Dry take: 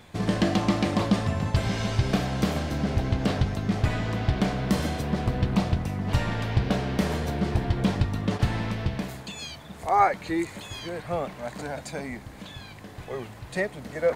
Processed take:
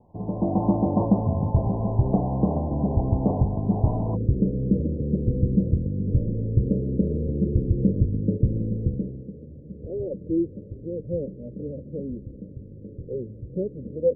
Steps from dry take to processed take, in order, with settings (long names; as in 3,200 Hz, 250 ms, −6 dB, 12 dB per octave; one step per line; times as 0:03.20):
Butterworth low-pass 1,000 Hz 96 dB per octave, from 0:04.15 540 Hz
automatic gain control gain up to 9 dB
level −5 dB